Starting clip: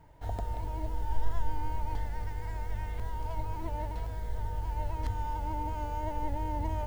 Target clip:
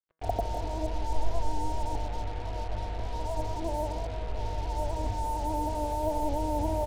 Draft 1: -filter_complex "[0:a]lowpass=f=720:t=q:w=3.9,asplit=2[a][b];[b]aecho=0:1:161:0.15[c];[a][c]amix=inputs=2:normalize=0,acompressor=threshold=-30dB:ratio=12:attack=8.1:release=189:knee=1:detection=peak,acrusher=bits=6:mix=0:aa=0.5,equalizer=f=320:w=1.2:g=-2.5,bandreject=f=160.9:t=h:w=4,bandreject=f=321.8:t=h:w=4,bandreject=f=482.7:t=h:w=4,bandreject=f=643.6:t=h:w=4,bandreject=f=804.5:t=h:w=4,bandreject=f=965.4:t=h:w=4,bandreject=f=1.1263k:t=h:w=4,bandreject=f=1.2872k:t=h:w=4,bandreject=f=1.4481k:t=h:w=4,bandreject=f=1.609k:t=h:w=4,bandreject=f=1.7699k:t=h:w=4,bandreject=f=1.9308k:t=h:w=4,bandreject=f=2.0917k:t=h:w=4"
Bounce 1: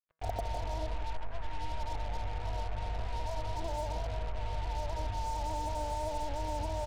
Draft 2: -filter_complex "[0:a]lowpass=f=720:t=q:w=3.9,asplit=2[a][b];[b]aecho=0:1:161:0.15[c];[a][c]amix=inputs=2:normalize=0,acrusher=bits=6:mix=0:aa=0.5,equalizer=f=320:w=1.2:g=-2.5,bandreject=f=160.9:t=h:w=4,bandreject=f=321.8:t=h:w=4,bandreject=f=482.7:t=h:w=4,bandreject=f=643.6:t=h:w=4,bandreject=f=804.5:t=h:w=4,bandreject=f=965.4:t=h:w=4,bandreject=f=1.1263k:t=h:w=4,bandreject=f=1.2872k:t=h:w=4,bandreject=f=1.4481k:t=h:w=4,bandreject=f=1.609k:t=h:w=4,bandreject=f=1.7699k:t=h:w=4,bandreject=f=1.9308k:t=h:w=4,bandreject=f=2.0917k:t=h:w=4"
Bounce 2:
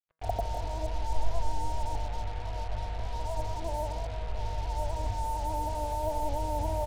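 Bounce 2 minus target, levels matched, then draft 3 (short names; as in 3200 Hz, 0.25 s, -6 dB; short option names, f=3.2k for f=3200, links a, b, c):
250 Hz band -6.5 dB
-filter_complex "[0:a]lowpass=f=720:t=q:w=3.9,asplit=2[a][b];[b]aecho=0:1:161:0.15[c];[a][c]amix=inputs=2:normalize=0,acrusher=bits=6:mix=0:aa=0.5,equalizer=f=320:w=1.2:g=6,bandreject=f=160.9:t=h:w=4,bandreject=f=321.8:t=h:w=4,bandreject=f=482.7:t=h:w=4,bandreject=f=643.6:t=h:w=4,bandreject=f=804.5:t=h:w=4,bandreject=f=965.4:t=h:w=4,bandreject=f=1.1263k:t=h:w=4,bandreject=f=1.2872k:t=h:w=4,bandreject=f=1.4481k:t=h:w=4,bandreject=f=1.609k:t=h:w=4,bandreject=f=1.7699k:t=h:w=4,bandreject=f=1.9308k:t=h:w=4,bandreject=f=2.0917k:t=h:w=4"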